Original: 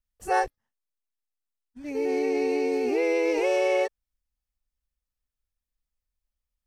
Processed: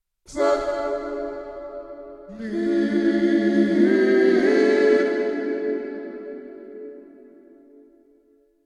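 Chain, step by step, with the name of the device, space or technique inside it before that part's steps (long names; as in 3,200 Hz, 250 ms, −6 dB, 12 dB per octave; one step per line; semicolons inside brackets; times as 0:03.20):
slowed and reverbed (speed change −23%; convolution reverb RT60 4.7 s, pre-delay 41 ms, DRR 0.5 dB)
level +3 dB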